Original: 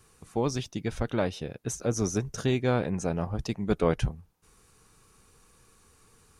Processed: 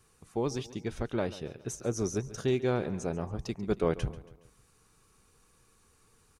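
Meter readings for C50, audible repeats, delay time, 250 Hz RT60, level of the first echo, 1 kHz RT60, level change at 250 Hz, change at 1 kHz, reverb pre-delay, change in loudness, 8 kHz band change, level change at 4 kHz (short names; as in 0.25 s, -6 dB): none, 3, 0.139 s, none, -17.0 dB, none, -3.5 dB, -5.0 dB, none, -3.5 dB, -5.0 dB, -5.0 dB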